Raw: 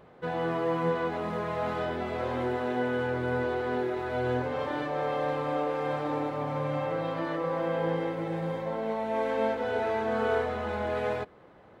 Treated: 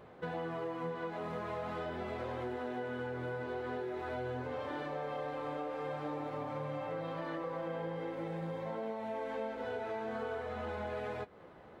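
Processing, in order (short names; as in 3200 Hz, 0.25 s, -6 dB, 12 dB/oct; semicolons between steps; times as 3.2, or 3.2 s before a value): flange 0.45 Hz, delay 8.6 ms, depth 9.7 ms, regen -43%; compressor 6:1, threshold -40 dBFS, peak gain reduction 13 dB; gain +3.5 dB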